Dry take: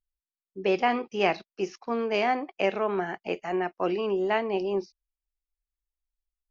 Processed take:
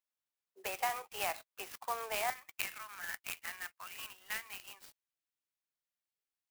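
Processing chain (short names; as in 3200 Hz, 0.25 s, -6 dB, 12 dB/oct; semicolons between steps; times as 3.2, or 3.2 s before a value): compressor, threshold -29 dBFS, peak gain reduction 11 dB; HPF 710 Hz 24 dB/oct, from 2.3 s 1500 Hz; clock jitter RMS 0.05 ms; gain +1.5 dB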